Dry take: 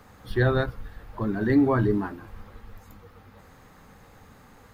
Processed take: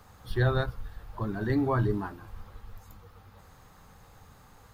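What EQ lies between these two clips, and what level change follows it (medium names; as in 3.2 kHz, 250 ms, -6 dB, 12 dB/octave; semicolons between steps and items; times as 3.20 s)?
graphic EQ 250/500/2000 Hz -8/-4/-6 dB; 0.0 dB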